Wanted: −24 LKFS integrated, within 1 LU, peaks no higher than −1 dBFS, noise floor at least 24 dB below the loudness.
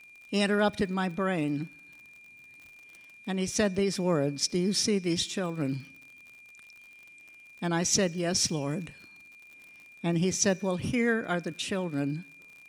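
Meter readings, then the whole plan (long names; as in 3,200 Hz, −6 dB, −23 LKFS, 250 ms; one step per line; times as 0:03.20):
crackle rate 59 per second; interfering tone 2,400 Hz; level of the tone −50 dBFS; integrated loudness −29.0 LKFS; sample peak −12.0 dBFS; target loudness −24.0 LKFS
→ click removal
notch filter 2,400 Hz, Q 30
level +5 dB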